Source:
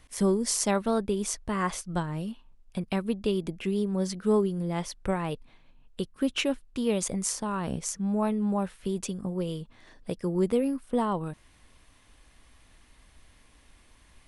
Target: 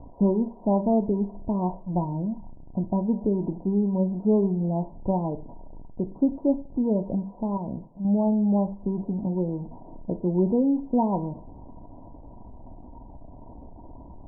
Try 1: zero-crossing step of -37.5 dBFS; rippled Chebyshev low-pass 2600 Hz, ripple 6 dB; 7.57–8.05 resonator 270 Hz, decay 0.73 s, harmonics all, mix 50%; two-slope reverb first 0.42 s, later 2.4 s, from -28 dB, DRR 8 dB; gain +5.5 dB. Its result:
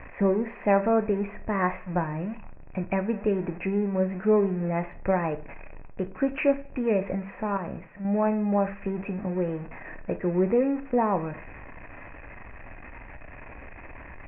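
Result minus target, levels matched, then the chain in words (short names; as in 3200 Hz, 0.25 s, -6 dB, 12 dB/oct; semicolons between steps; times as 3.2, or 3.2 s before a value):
1000 Hz band +4.0 dB
zero-crossing step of -37.5 dBFS; rippled Chebyshev low-pass 980 Hz, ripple 6 dB; 7.57–8.05 resonator 270 Hz, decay 0.73 s, harmonics all, mix 50%; two-slope reverb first 0.42 s, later 2.4 s, from -28 dB, DRR 8 dB; gain +5.5 dB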